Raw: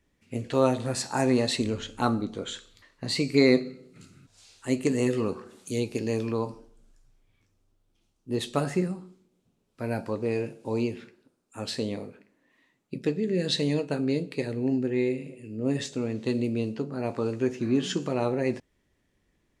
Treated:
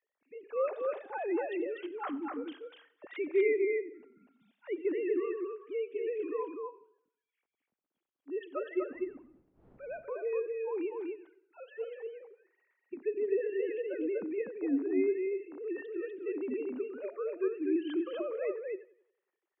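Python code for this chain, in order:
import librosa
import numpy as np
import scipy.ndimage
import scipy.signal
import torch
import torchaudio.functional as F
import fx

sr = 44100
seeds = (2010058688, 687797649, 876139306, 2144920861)

p1 = fx.sine_speech(x, sr)
p2 = fx.dmg_wind(p1, sr, seeds[0], corner_hz=340.0, level_db=-55.0, at=(8.94, 9.86), fade=0.02)
p3 = scipy.signal.sosfilt(scipy.signal.bessel(2, 2400.0, 'lowpass', norm='mag', fs=sr, output='sos'), p2)
p4 = p3 + fx.echo_single(p3, sr, ms=245, db=-3.5, dry=0)
p5 = fx.echo_warbled(p4, sr, ms=90, feedback_pct=43, rate_hz=2.8, cents=52, wet_db=-20.5)
y = F.gain(torch.from_numpy(p5), -8.0).numpy()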